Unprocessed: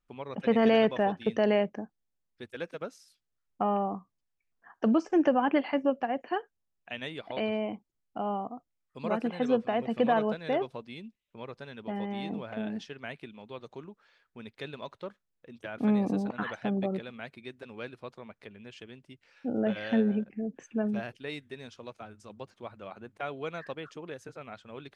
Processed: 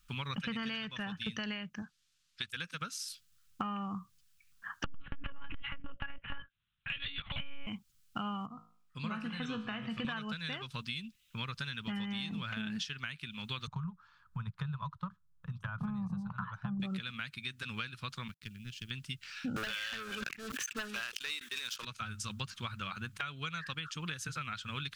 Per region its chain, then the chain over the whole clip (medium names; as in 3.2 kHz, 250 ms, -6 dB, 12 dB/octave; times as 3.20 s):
1.82–2.48 s: low-pass 5 kHz + tilt EQ +2.5 dB/octave
4.84–7.67 s: high-pass 130 Hz 6 dB/octave + monotone LPC vocoder at 8 kHz 280 Hz + transformer saturation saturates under 130 Hz
8.46–10.05 s: treble shelf 3.1 kHz -9.5 dB + feedback comb 54 Hz, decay 0.48 s, mix 70%
13.67–16.80 s: FFT filter 180 Hz 0 dB, 260 Hz -27 dB, 1 kHz -1 dB, 2.2 kHz -26 dB + transient shaper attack +3 dB, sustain -4 dB + three bands compressed up and down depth 40%
18.28–18.91 s: companding laws mixed up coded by A + FFT filter 320 Hz 0 dB, 670 Hz -15 dB, 4.2 kHz -8 dB
19.56–21.85 s: steep high-pass 320 Hz + waveshaping leveller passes 3 + decay stretcher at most 100 dB/s
whole clip: FFT filter 160 Hz 0 dB, 350 Hz -20 dB, 690 Hz -23 dB, 1.3 kHz +2 dB, 2.9 kHz +6 dB; compression 12:1, threshold -48 dBFS; peaking EQ 2 kHz -6.5 dB 0.55 oct; trim +14 dB